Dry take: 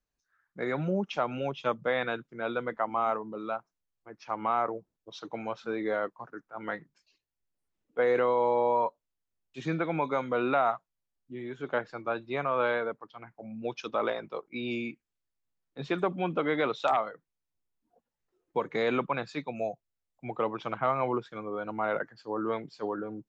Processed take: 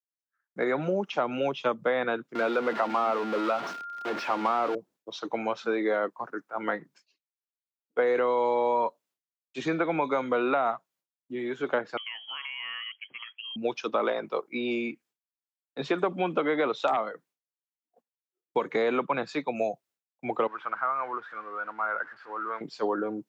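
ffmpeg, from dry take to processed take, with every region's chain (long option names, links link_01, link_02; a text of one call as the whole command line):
ffmpeg -i in.wav -filter_complex "[0:a]asettb=1/sr,asplit=3[link_01][link_02][link_03];[link_01]atrim=end=2.354[link_04];[link_02]atrim=start=2.35:end=4.75,asetpts=PTS-STARTPTS,afade=type=in:duration=0.004:curve=qsin,afade=type=out:start_time=2.396:duration=0.004:curve=qsin,aeval=exprs='val(0)+0.5*0.0211*sgn(val(0))':channel_layout=same,acrossover=split=170 4600:gain=0.178 1 0.0794[link_05][link_06][link_07];[link_05][link_06][link_07]amix=inputs=3:normalize=0,aeval=exprs='val(0)+0.00631*sin(2*PI*1400*n/s)':channel_layout=same[link_08];[link_03]atrim=start=4.746[link_09];[link_04][link_08]acrossfade=duration=0.004:curve1=hsin:curve2=qsin[link_10];[link_10][link_09]acrossfade=duration=0.004:curve1=qsin:curve2=hsin,asettb=1/sr,asplit=3[link_11][link_12][link_13];[link_11]atrim=end=11.974[link_14];[link_12]atrim=start=11.97:end=13.56,asetpts=PTS-STARTPTS,afade=type=in:duration=0.004:curve=qsin,afade=type=out:start_time=1.586:duration=0.004:curve=qsin,acompressor=threshold=-42dB:ratio=2.5:attack=3.2:release=140:knee=1:detection=peak,lowpass=frequency=2900:width_type=q:width=0.5098,lowpass=frequency=2900:width_type=q:width=0.6013,lowpass=frequency=2900:width_type=q:width=0.9,lowpass=frequency=2900:width_type=q:width=2.563,afreqshift=-3400[link_15];[link_13]atrim=start=13.556[link_16];[link_14][link_15]acrossfade=duration=0.004:curve1=hsin:curve2=qsin[link_17];[link_17][link_16]acrossfade=duration=0.004:curve1=qsin:curve2=hsin,asettb=1/sr,asplit=3[link_18][link_19][link_20];[link_18]atrim=end=20.474[link_21];[link_19]atrim=start=20.47:end=22.61,asetpts=PTS-STARTPTS,afade=type=in:duration=0.004:curve=qsin,afade=type=out:start_time=2.136:duration=0.004:curve=qsin,aeval=exprs='val(0)+0.5*0.00794*sgn(val(0))':channel_layout=same,bandpass=frequency=1400:width_type=q:width=3.4,aemphasis=mode=reproduction:type=bsi[link_22];[link_20]atrim=start=22.606[link_23];[link_21][link_22]acrossfade=duration=0.004:curve1=hsin:curve2=qsin[link_24];[link_24][link_23]acrossfade=duration=0.004:curve1=qsin:curve2=hsin,agate=range=-33dB:threshold=-60dB:ratio=3:detection=peak,highpass=230,acrossover=split=350|1600[link_25][link_26][link_27];[link_25]acompressor=threshold=-41dB:ratio=4[link_28];[link_26]acompressor=threshold=-34dB:ratio=4[link_29];[link_27]acompressor=threshold=-46dB:ratio=4[link_30];[link_28][link_29][link_30]amix=inputs=3:normalize=0,volume=8dB" out.wav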